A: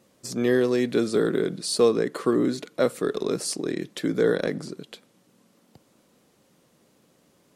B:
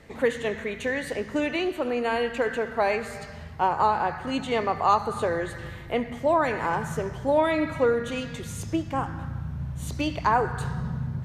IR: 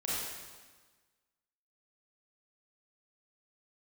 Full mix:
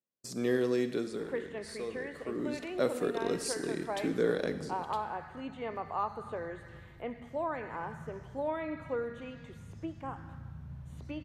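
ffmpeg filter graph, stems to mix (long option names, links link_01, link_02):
-filter_complex "[0:a]agate=range=-30dB:threshold=-49dB:ratio=16:detection=peak,volume=3.5dB,afade=type=out:start_time=0.8:duration=0.49:silence=0.251189,afade=type=in:start_time=2.21:duration=0.62:silence=0.223872,asplit=2[link_01][link_02];[link_02]volume=-14dB[link_03];[1:a]acrossover=split=2700[link_04][link_05];[link_05]acompressor=threshold=-55dB:ratio=4:attack=1:release=60[link_06];[link_04][link_06]amix=inputs=2:normalize=0,adelay=1100,volume=-12.5dB[link_07];[2:a]atrim=start_sample=2205[link_08];[link_03][link_08]afir=irnorm=-1:irlink=0[link_09];[link_01][link_07][link_09]amix=inputs=3:normalize=0"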